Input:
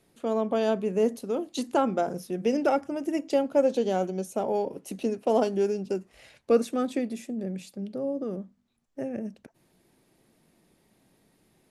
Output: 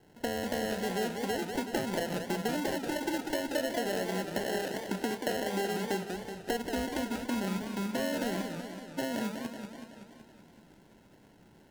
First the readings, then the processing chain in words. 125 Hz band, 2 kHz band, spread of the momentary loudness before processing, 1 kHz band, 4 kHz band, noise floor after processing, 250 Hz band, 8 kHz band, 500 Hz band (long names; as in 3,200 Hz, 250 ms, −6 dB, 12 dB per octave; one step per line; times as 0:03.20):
−1.0 dB, +6.0 dB, 11 LU, −4.5 dB, +5.5 dB, −59 dBFS, −4.0 dB, +3.5 dB, −8.0 dB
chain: low-pass that shuts in the quiet parts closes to 1,700 Hz, open at −19 dBFS
in parallel at +1.5 dB: brickwall limiter −21.5 dBFS, peak gain reduction 10.5 dB
on the sum: downward compressor 10 to 1, threshold −29 dBFS, peak gain reduction 16.5 dB
decimation without filtering 37×
feedback echo with a swinging delay time 188 ms, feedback 64%, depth 212 cents, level −6.5 dB
level −1 dB